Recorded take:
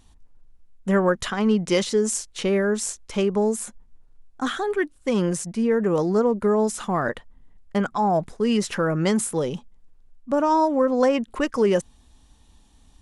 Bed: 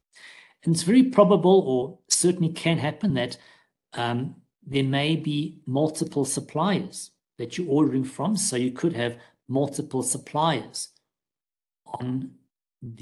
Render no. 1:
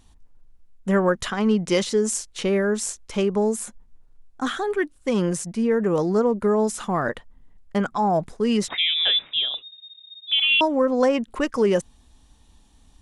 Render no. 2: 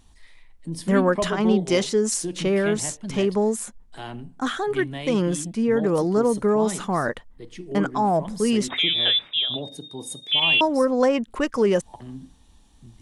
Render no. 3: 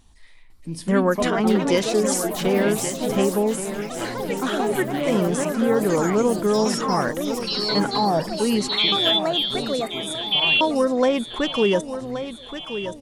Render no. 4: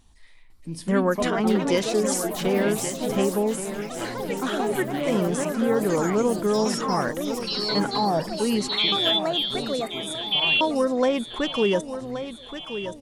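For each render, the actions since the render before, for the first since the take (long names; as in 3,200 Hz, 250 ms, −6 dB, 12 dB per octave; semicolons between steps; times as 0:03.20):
0:08.68–0:10.61: voice inversion scrambler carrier 3,700 Hz
mix in bed −9.5 dB
on a send: repeating echo 1,125 ms, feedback 49%, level −10.5 dB; on the sum: delay with pitch and tempo change per echo 502 ms, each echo +4 semitones, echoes 3, each echo −6 dB
level −2.5 dB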